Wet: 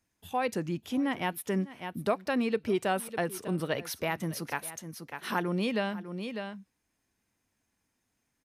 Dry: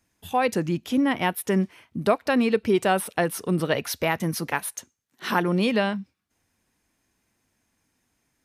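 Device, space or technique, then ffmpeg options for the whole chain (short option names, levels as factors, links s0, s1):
ducked delay: -filter_complex "[0:a]asplit=3[s0][s1][s2];[s1]adelay=600,volume=0.447[s3];[s2]apad=whole_len=398805[s4];[s3][s4]sidechaincompress=threshold=0.0158:ratio=5:attack=10:release=191[s5];[s0][s5]amix=inputs=2:normalize=0,volume=0.422"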